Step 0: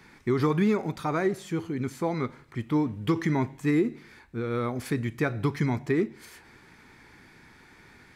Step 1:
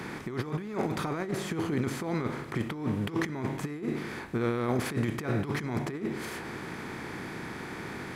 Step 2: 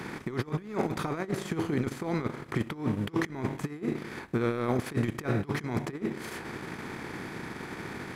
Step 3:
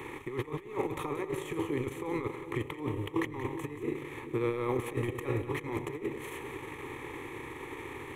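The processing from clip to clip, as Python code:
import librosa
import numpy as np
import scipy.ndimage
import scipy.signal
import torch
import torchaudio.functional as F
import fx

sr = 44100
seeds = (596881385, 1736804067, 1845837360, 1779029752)

y1 = fx.bin_compress(x, sr, power=0.6)
y1 = fx.over_compress(y1, sr, threshold_db=-26.0, ratio=-0.5)
y1 = y1 * librosa.db_to_amplitude(-3.5)
y2 = fx.transient(y1, sr, attack_db=3, sustain_db=-11)
y3 = fx.fixed_phaser(y2, sr, hz=1000.0, stages=8)
y3 = fx.echo_split(y3, sr, split_hz=580.0, low_ms=388, high_ms=179, feedback_pct=52, wet_db=-11.0)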